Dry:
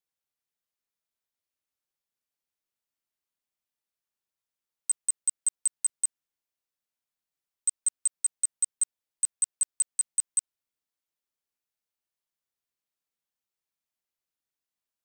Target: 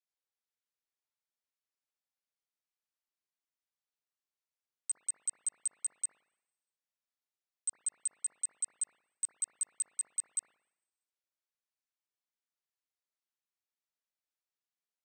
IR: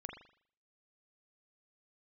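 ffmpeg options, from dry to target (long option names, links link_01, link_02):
-filter_complex "[0:a]highpass=140,lowpass=5400,aemphasis=mode=production:type=bsi[link_01];[1:a]atrim=start_sample=2205,asetrate=31752,aresample=44100[link_02];[link_01][link_02]afir=irnorm=-1:irlink=0,volume=-5.5dB"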